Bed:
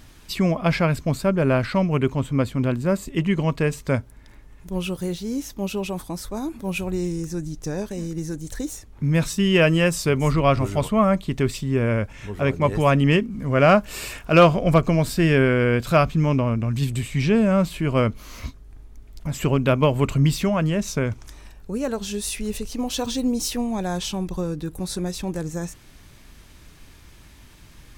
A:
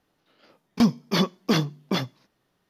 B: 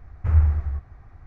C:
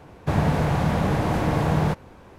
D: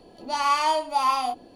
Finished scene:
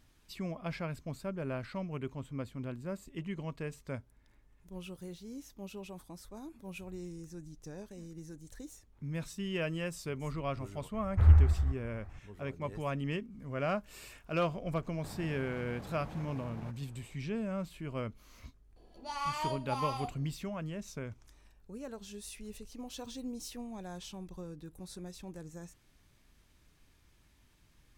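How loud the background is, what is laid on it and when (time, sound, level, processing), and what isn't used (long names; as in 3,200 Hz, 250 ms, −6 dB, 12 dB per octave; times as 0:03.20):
bed −18 dB
0:10.93: mix in B −3 dB
0:14.77: mix in C −15.5 dB + downward compressor, threshold −27 dBFS
0:18.76: mix in D −13.5 dB
not used: A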